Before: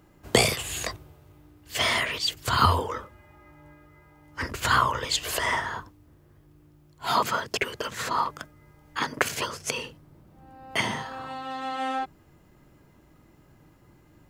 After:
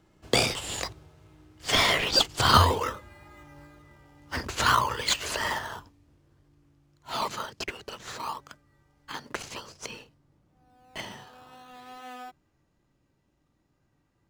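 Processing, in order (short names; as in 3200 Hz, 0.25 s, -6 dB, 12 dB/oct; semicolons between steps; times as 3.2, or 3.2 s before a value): Doppler pass-by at 2.9, 15 m/s, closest 21 m; LPF 6200 Hz 12 dB/oct; high shelf 2700 Hz +11 dB; in parallel at -5.5 dB: decimation with a swept rate 14×, swing 100% 0.55 Hz; on the sum: wow and flutter 17 cents; gain -1.5 dB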